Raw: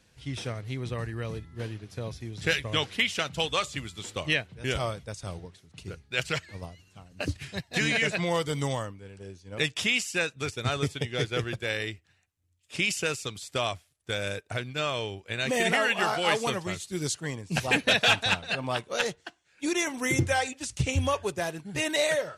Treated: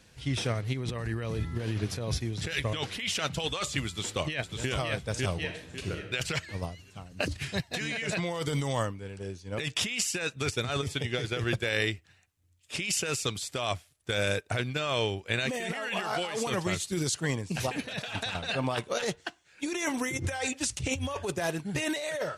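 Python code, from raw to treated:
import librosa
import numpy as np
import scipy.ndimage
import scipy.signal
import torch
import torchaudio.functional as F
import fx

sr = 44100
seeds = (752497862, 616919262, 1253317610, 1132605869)

y = fx.over_compress(x, sr, threshold_db=-40.0, ratio=-1.0, at=(0.72, 2.18), fade=0.02)
y = fx.echo_throw(y, sr, start_s=3.87, length_s=0.83, ms=550, feedback_pct=30, wet_db=-5.5)
y = fx.reverb_throw(y, sr, start_s=5.39, length_s=0.65, rt60_s=0.84, drr_db=4.0)
y = fx.over_compress(y, sr, threshold_db=-32.0, ratio=-1.0)
y = y * librosa.db_to_amplitude(1.5)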